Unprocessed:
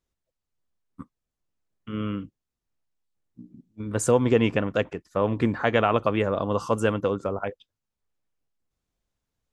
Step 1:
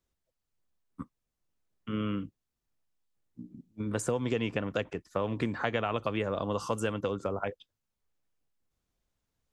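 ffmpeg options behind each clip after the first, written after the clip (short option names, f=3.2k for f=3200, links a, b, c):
-filter_complex "[0:a]acrossover=split=110|2500[a][b][c];[a]acompressor=threshold=-45dB:ratio=4[d];[b]acompressor=threshold=-29dB:ratio=4[e];[c]acompressor=threshold=-39dB:ratio=4[f];[d][e][f]amix=inputs=3:normalize=0"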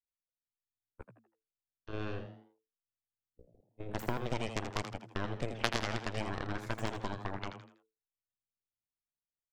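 -filter_complex "[0:a]aeval=exprs='0.237*(cos(1*acos(clip(val(0)/0.237,-1,1)))-cos(1*PI/2))+0.0841*(cos(3*acos(clip(val(0)/0.237,-1,1)))-cos(3*PI/2))+0.00168*(cos(5*acos(clip(val(0)/0.237,-1,1)))-cos(5*PI/2))+0.015*(cos(8*acos(clip(val(0)/0.237,-1,1)))-cos(8*PI/2))':c=same,asplit=5[a][b][c][d][e];[b]adelay=81,afreqshift=110,volume=-9dB[f];[c]adelay=162,afreqshift=220,volume=-17.9dB[g];[d]adelay=243,afreqshift=330,volume=-26.7dB[h];[e]adelay=324,afreqshift=440,volume=-35.6dB[i];[a][f][g][h][i]amix=inputs=5:normalize=0,volume=4dB"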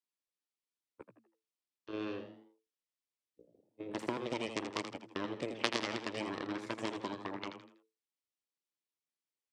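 -af "highpass=240,equalizer=f=310:t=q:w=4:g=5,equalizer=f=730:t=q:w=4:g=-7,equalizer=f=1.5k:t=q:w=4:g=-7,equalizer=f=6.8k:t=q:w=4:g=-4,lowpass=f=9.4k:w=0.5412,lowpass=f=9.4k:w=1.3066,volume=1dB"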